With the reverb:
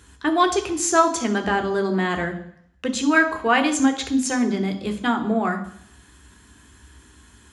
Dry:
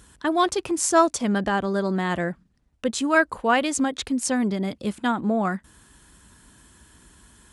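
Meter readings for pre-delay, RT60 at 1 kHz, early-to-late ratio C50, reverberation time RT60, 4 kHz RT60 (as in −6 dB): 3 ms, 0.70 s, 11.5 dB, 0.65 s, 0.70 s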